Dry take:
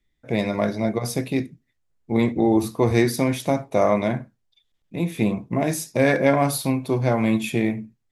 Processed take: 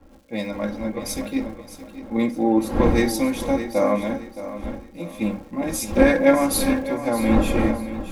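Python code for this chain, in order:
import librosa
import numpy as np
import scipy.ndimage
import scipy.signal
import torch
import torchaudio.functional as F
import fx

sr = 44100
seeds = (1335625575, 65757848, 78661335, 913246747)

p1 = fx.dmg_wind(x, sr, seeds[0], corner_hz=440.0, level_db=-28.0)
p2 = p1 + 0.82 * np.pad(p1, (int(3.7 * sr / 1000.0), 0))[:len(p1)]
p3 = fx.dmg_crackle(p2, sr, seeds[1], per_s=360.0, level_db=-35.0)
p4 = p3 + fx.echo_feedback(p3, sr, ms=619, feedback_pct=44, wet_db=-8.0, dry=0)
p5 = fx.band_widen(p4, sr, depth_pct=70)
y = p5 * librosa.db_to_amplitude(-4.0)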